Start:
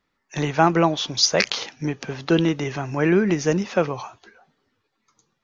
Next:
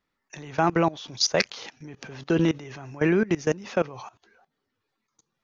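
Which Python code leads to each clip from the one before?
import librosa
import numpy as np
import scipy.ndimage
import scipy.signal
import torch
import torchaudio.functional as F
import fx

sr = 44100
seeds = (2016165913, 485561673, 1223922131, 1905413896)

y = fx.level_steps(x, sr, step_db=20)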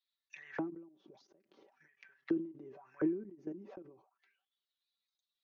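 y = x + 0.66 * np.pad(x, (int(5.2 * sr / 1000.0), 0))[:len(x)]
y = fx.auto_wah(y, sr, base_hz=310.0, top_hz=3900.0, q=7.8, full_db=-26.0, direction='down')
y = fx.end_taper(y, sr, db_per_s=110.0)
y = F.gain(torch.from_numpy(y), 2.5).numpy()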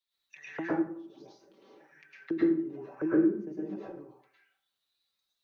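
y = fx.rev_plate(x, sr, seeds[0], rt60_s=0.51, hf_ratio=0.65, predelay_ms=95, drr_db=-7.5)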